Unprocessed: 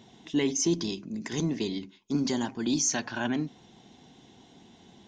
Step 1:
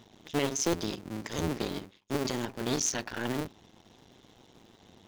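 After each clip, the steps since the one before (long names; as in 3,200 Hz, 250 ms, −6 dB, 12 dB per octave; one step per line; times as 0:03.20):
sub-harmonics by changed cycles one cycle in 2, muted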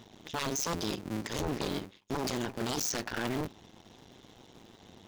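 wave folding −27.5 dBFS
level +2.5 dB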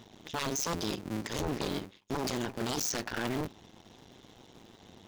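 no processing that can be heard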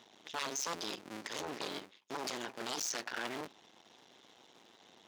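meter weighting curve A
level −3.5 dB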